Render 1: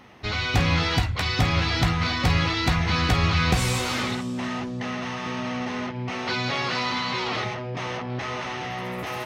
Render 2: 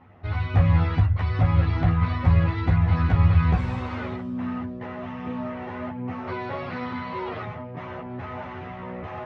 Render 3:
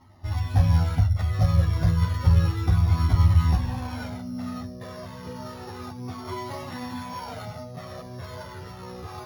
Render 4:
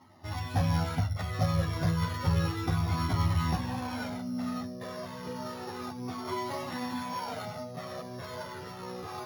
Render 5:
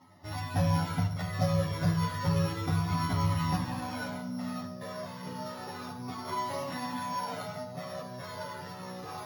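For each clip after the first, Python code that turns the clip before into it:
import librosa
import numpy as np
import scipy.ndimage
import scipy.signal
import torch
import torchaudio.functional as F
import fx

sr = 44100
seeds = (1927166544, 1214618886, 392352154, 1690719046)

y1 = scipy.signal.sosfilt(scipy.signal.butter(2, 1500.0, 'lowpass', fs=sr, output='sos'), x)
y1 = fx.peak_eq(y1, sr, hz=95.0, db=10.0, octaves=0.28)
y1 = fx.chorus_voices(y1, sr, voices=4, hz=0.64, base_ms=12, depth_ms=1.1, mix_pct=50)
y2 = np.r_[np.sort(y1[:len(y1) // 8 * 8].reshape(-1, 8), axis=1).ravel(), y1[len(y1) // 8 * 8:]]
y2 = fx.bass_treble(y2, sr, bass_db=1, treble_db=-7)
y2 = fx.comb_cascade(y2, sr, direction='falling', hz=0.31)
y2 = F.gain(torch.from_numpy(y2), 1.5).numpy()
y3 = scipy.signal.sosfilt(scipy.signal.butter(2, 160.0, 'highpass', fs=sr, output='sos'), y2)
y4 = y3 + 0.45 * np.pad(y3, (int(6.9 * sr / 1000.0), 0))[:len(y3)]
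y4 = fx.rev_fdn(y4, sr, rt60_s=0.96, lf_ratio=1.0, hf_ratio=0.75, size_ms=32.0, drr_db=5.5)
y4 = F.gain(torch.from_numpy(y4), -2.5).numpy()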